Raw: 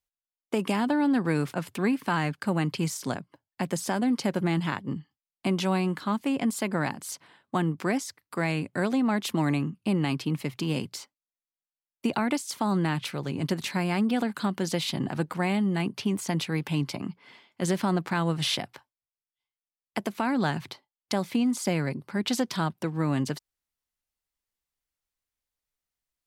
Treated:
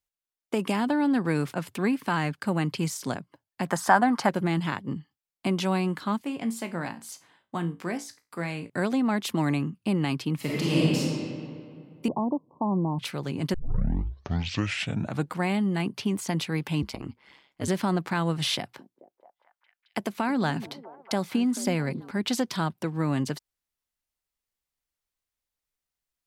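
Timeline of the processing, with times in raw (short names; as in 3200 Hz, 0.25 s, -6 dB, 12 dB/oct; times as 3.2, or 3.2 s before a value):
3.66–4.29 band shelf 1100 Hz +13.5 dB
6.22–8.7 resonator 57 Hz, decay 0.27 s, mix 70%
10.36–10.99 reverb throw, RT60 2.3 s, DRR -6.5 dB
12.08–12.99 Chebyshev low-pass 1100 Hz, order 8
13.54 tape start 1.79 s
16.82–17.68 ring modulator 69 Hz
18.55–22.11 delay with a stepping band-pass 0.218 s, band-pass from 280 Hz, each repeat 0.7 oct, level -11.5 dB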